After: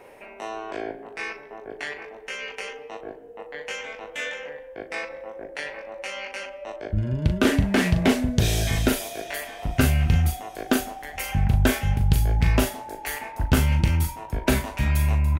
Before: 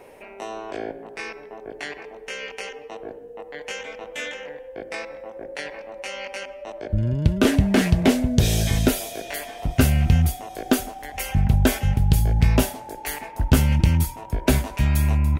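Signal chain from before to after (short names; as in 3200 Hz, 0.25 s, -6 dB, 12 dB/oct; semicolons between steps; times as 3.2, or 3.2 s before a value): bell 1600 Hz +4.5 dB 1.9 oct; doubler 39 ms -7 dB; gain -3.5 dB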